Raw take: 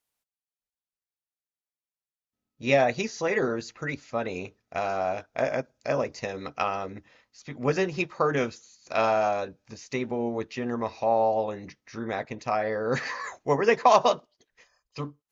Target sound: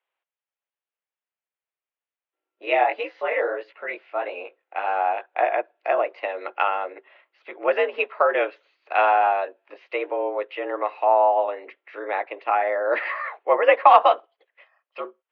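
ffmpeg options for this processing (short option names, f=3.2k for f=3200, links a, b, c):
-filter_complex "[0:a]asplit=3[a][b][c];[a]afade=t=out:st=2.64:d=0.02[d];[b]flanger=delay=16.5:depth=6.4:speed=1.6,afade=t=in:st=2.64:d=0.02,afade=t=out:st=4.86:d=0.02[e];[c]afade=t=in:st=4.86:d=0.02[f];[d][e][f]amix=inputs=3:normalize=0,highpass=f=330:t=q:w=0.5412,highpass=f=330:t=q:w=1.307,lowpass=f=3k:t=q:w=0.5176,lowpass=f=3k:t=q:w=0.7071,lowpass=f=3k:t=q:w=1.932,afreqshift=82,volume=5.5dB"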